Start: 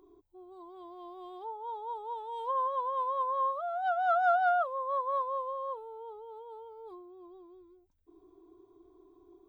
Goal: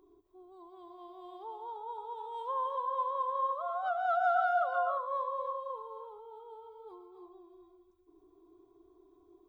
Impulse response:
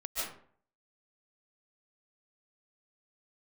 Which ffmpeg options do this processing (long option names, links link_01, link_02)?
-filter_complex "[0:a]asplit=2[link_01][link_02];[1:a]atrim=start_sample=2205,lowshelf=frequency=400:gain=-10.5,adelay=123[link_03];[link_02][link_03]afir=irnorm=-1:irlink=0,volume=-6.5dB[link_04];[link_01][link_04]amix=inputs=2:normalize=0,volume=-3.5dB"